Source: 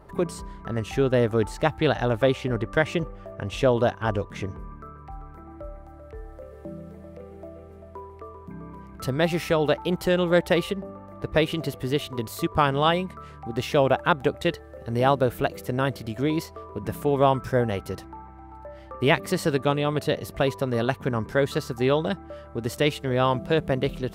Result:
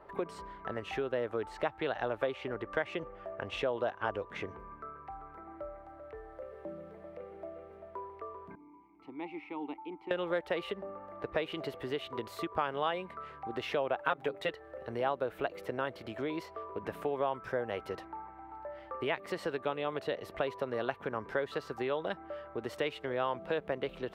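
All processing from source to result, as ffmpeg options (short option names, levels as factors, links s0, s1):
-filter_complex "[0:a]asettb=1/sr,asplit=3[s0][s1][s2];[s0]atrim=end=8.554[s3];[s1]atrim=start=8.55:end=10.11,asetpts=PTS-STARTPTS,afade=t=in:d=0.004:c=qsin,afade=t=out:st=1.556:d=0.004:c=qsin,asplit=3[s4][s5][s6];[s4]bandpass=f=300:t=q:w=8,volume=1[s7];[s5]bandpass=f=870:t=q:w=8,volume=0.501[s8];[s6]bandpass=f=2240:t=q:w=8,volume=0.355[s9];[s7][s8][s9]amix=inputs=3:normalize=0,aeval=exprs='val(0)+0.000562*(sin(2*PI*60*n/s)+sin(2*PI*2*60*n/s)/2+sin(2*PI*3*60*n/s)/3+sin(2*PI*4*60*n/s)/4+sin(2*PI*5*60*n/s)/5)':c=same[s10];[s2]atrim=start=10.106[s11];[s3][s10]acrossfade=d=0.004:c1=hsin:c2=qsin[s12];[s12][s11]acrossfade=d=0.004:c1=qsin:c2=hsin,asettb=1/sr,asplit=3[s13][s14][s15];[s13]atrim=end=14.004[s16];[s14]atrim=start=14:end=14.49,asetpts=PTS-STARTPTS,afade=t=in:d=0.004:c=qsin,afade=t=out:st=0.486:d=0.004:c=qsin,highshelf=f=7600:g=7.5,bandreject=f=50:t=h:w=6,bandreject=f=100:t=h:w=6,bandreject=f=150:t=h:w=6,bandreject=f=200:t=h:w=6,bandreject=f=250:t=h:w=6,bandreject=f=300:t=h:w=6,bandreject=f=350:t=h:w=6,bandreject=f=400:t=h:w=6,aecho=1:1:7.3:0.79,atrim=end_sample=21609[s17];[s15]atrim=start=14.486[s18];[s16][s17]acrossfade=d=0.004:c1=hsin:c2=qsin[s19];[s19][s18]acrossfade=d=0.004:c1=qsin:c2=hsin,acompressor=threshold=0.0501:ratio=6,acrossover=split=350 3500:gain=0.178 1 0.141[s20][s21][s22];[s20][s21][s22]amix=inputs=3:normalize=0,volume=0.891"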